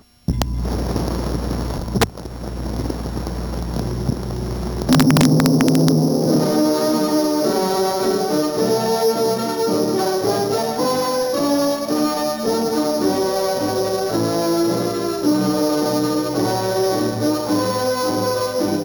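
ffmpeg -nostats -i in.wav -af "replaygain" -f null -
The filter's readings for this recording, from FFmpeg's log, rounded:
track_gain = +0.1 dB
track_peak = 0.362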